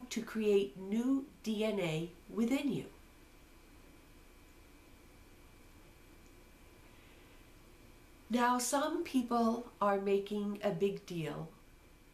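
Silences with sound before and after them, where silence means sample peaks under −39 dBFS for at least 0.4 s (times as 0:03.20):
0:02.84–0:08.31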